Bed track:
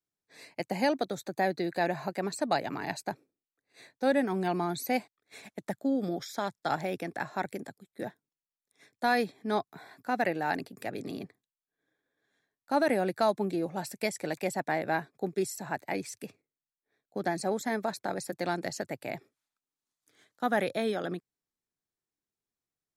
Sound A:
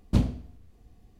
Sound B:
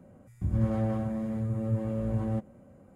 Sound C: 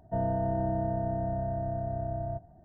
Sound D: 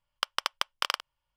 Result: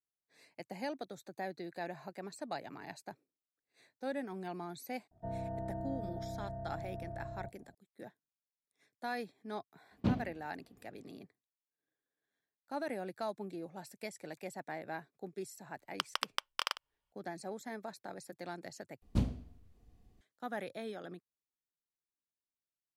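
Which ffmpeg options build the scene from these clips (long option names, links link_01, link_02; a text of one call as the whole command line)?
ffmpeg -i bed.wav -i cue0.wav -i cue1.wav -i cue2.wav -i cue3.wav -filter_complex "[1:a]asplit=2[link_01][link_02];[0:a]volume=-12.5dB[link_03];[link_01]highpass=140,lowpass=3400[link_04];[link_03]asplit=2[link_05][link_06];[link_05]atrim=end=19.024[link_07];[link_02]atrim=end=1.19,asetpts=PTS-STARTPTS,volume=-8.5dB[link_08];[link_06]atrim=start=20.206[link_09];[3:a]atrim=end=2.64,asetpts=PTS-STARTPTS,volume=-11dB,afade=type=in:duration=0.004:curve=hsin,afade=type=out:start_time=2.636:duration=0.004:curve=hsin,adelay=5110[link_10];[link_04]atrim=end=1.19,asetpts=PTS-STARTPTS,volume=-5dB,afade=type=in:duration=0.004:curve=hsin,afade=type=out:start_time=1.186:duration=0.004:curve=hsin,adelay=9910[link_11];[4:a]atrim=end=1.36,asetpts=PTS-STARTPTS,volume=-6dB,afade=type=in:duration=0.004:curve=hsin,afade=type=out:start_time=1.356:duration=0.004:curve=hsin,adelay=15770[link_12];[link_07][link_08]acrossfade=duration=0.004:curve1=hsin:curve2=hsin[link_13];[link_13][link_09]acrossfade=duration=0.004:curve1=hsin:curve2=hsin[link_14];[link_14][link_10][link_11][link_12]amix=inputs=4:normalize=0" out.wav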